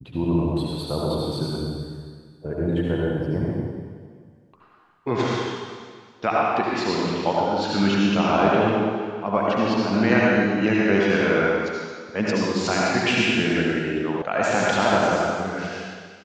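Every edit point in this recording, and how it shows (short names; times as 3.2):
14.22 sound cut off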